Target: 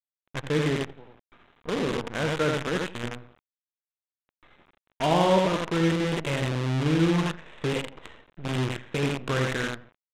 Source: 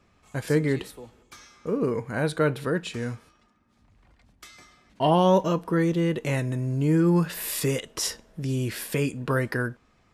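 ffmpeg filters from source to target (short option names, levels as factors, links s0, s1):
-af "aecho=1:1:85|170|255|340:0.668|0.201|0.0602|0.018,aresample=8000,acrusher=bits=5:dc=4:mix=0:aa=0.000001,aresample=44100,highshelf=f=3000:g=-8.5,adynamicsmooth=sensitivity=3:basefreq=1900,crystalizer=i=4:c=0,volume=0.668"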